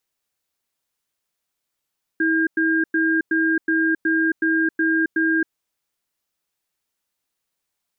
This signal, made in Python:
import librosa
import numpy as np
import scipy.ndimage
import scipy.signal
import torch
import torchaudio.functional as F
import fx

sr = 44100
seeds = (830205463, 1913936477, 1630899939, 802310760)

y = fx.cadence(sr, length_s=3.33, low_hz=323.0, high_hz=1610.0, on_s=0.27, off_s=0.1, level_db=-19.0)